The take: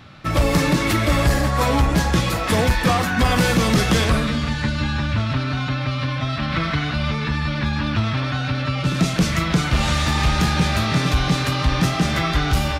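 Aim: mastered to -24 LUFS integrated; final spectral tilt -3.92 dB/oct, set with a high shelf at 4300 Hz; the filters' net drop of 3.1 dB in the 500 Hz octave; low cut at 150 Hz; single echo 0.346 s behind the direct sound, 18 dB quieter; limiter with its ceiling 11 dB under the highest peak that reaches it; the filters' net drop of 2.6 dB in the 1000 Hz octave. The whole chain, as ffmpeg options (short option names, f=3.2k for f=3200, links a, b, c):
-af "highpass=150,equalizer=f=500:t=o:g=-3,equalizer=f=1k:t=o:g=-3,highshelf=f=4.3k:g=5,alimiter=limit=-17dB:level=0:latency=1,aecho=1:1:346:0.126,volume=1.5dB"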